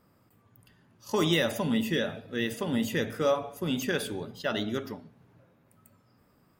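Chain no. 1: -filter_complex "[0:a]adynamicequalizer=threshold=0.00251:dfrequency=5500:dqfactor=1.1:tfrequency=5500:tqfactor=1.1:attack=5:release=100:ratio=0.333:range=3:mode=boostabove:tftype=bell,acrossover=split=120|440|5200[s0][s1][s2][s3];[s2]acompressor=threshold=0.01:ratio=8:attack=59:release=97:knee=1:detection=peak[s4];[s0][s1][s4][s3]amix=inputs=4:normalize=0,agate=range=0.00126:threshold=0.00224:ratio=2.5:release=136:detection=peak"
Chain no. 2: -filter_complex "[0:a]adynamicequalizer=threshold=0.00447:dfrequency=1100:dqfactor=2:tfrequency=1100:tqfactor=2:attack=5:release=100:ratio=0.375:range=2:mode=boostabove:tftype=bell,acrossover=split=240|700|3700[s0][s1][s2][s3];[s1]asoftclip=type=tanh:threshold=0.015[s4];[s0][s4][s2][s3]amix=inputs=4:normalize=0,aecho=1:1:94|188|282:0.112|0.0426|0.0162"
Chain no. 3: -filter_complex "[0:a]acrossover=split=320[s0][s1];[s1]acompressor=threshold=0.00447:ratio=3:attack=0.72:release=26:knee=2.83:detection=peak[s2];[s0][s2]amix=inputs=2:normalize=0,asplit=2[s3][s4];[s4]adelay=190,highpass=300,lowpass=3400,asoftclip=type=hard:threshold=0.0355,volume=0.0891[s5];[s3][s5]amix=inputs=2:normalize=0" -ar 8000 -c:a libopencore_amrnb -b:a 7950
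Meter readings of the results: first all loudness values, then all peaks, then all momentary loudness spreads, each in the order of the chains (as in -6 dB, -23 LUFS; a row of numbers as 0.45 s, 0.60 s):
-31.5 LUFS, -31.5 LUFS, -35.0 LUFS; -15.0 dBFS, -14.5 dBFS, -20.5 dBFS; 8 LU, 9 LU, 10 LU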